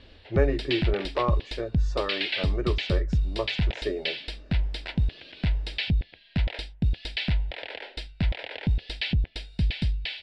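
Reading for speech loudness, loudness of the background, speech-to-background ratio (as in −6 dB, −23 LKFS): −31.5 LKFS, −29.5 LKFS, −2.0 dB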